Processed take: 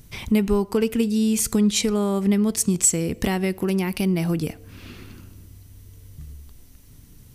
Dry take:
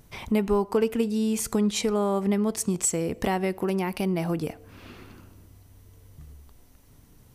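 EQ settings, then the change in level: bell 780 Hz -10.5 dB 2.2 oct; +7.5 dB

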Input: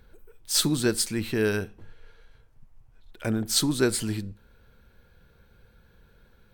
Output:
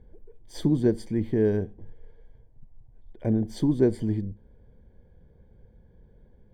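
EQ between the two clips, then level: running mean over 33 samples; +3.5 dB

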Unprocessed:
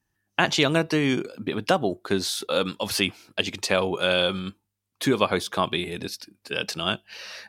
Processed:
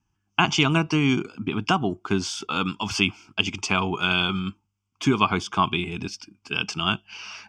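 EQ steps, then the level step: air absorption 68 m; fixed phaser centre 2700 Hz, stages 8; +5.5 dB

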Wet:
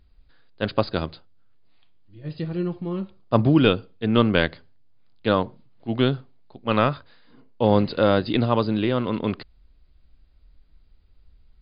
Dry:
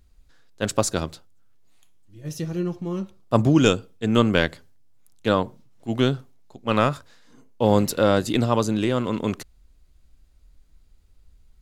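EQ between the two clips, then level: brick-wall FIR low-pass 5000 Hz; 0.0 dB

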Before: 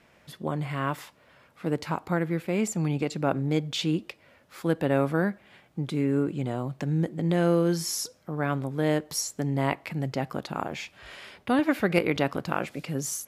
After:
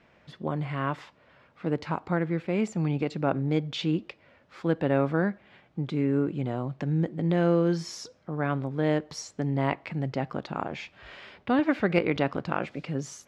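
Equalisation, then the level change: air absorption 140 m; 0.0 dB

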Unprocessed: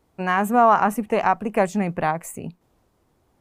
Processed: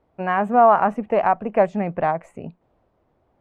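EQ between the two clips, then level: LPF 2600 Hz 12 dB/oct; bell 620 Hz +7 dB 0.69 oct; -2.0 dB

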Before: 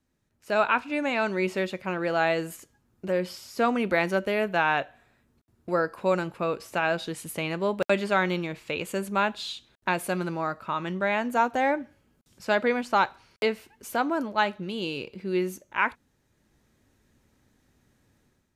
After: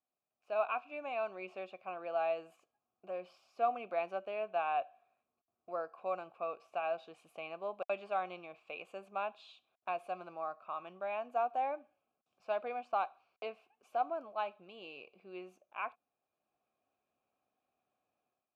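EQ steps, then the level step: vowel filter a; -2.0 dB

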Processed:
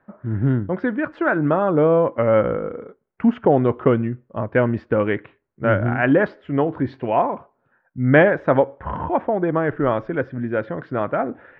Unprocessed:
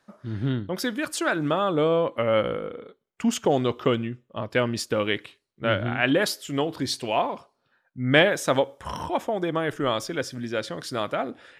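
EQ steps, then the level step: LPF 1800 Hz 24 dB/oct; low shelf 170 Hz +3.5 dB; notch 1200 Hz, Q 16; +5.5 dB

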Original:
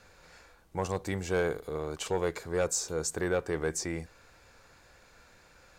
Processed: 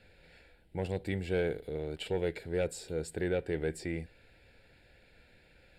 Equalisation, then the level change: Bessel low-pass 8400 Hz, order 2; fixed phaser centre 2700 Hz, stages 4; 0.0 dB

